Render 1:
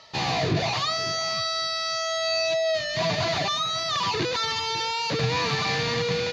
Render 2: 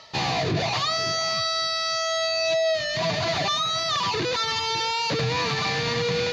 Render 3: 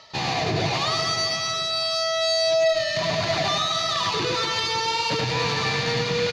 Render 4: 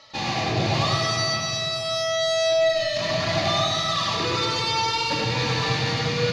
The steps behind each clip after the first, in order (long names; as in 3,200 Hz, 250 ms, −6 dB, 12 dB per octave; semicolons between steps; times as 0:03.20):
reversed playback; upward compression, threshold −30 dBFS; reversed playback; brickwall limiter −18.5 dBFS, peak gain reduction 4.5 dB; level +2 dB
reverse bouncing-ball delay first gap 100 ms, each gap 1.4×, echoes 5; harmonic generator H 2 −18 dB, 3 −21 dB, 5 −25 dB, 7 −32 dB, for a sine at −8.5 dBFS
rectangular room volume 1,700 cubic metres, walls mixed, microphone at 2.3 metres; level −3.5 dB